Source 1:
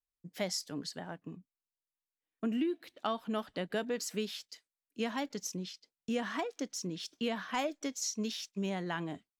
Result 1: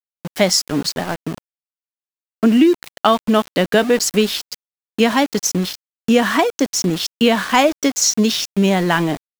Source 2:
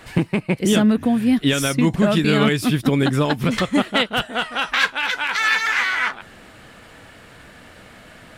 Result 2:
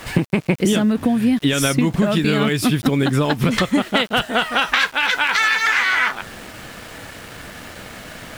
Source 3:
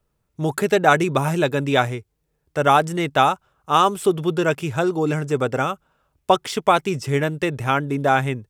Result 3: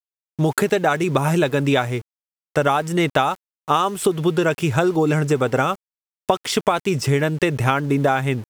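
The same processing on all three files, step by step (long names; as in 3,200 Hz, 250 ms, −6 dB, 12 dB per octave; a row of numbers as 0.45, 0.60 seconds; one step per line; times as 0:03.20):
downward compressor 16 to 1, threshold −22 dBFS
centre clipping without the shift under −45 dBFS
normalise the peak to −1.5 dBFS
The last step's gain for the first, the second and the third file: +20.0, +9.0, +8.0 decibels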